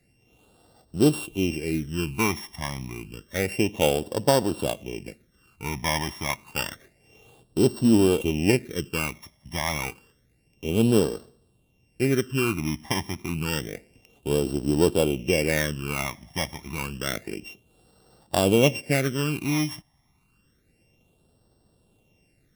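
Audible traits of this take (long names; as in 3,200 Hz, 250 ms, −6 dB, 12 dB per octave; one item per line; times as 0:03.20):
a buzz of ramps at a fixed pitch in blocks of 16 samples
phaser sweep stages 12, 0.29 Hz, lowest notch 450–2,300 Hz
Ogg Vorbis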